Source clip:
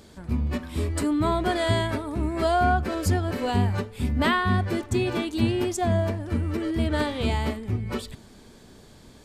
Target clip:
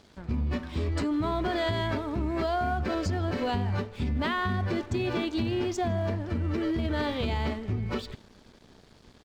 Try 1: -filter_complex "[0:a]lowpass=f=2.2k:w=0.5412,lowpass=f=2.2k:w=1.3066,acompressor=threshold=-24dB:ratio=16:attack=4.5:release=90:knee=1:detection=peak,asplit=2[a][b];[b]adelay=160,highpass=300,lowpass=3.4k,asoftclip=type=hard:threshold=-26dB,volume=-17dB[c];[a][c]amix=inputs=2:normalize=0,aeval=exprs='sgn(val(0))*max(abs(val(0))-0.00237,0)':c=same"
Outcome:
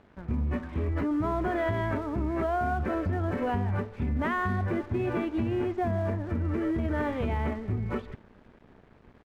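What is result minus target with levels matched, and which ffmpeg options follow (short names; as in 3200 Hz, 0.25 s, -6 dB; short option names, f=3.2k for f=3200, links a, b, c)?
8000 Hz band -12.5 dB
-filter_complex "[0:a]lowpass=f=5.9k:w=0.5412,lowpass=f=5.9k:w=1.3066,acompressor=threshold=-24dB:ratio=16:attack=4.5:release=90:knee=1:detection=peak,asplit=2[a][b];[b]adelay=160,highpass=300,lowpass=3.4k,asoftclip=type=hard:threshold=-26dB,volume=-17dB[c];[a][c]amix=inputs=2:normalize=0,aeval=exprs='sgn(val(0))*max(abs(val(0))-0.00237,0)':c=same"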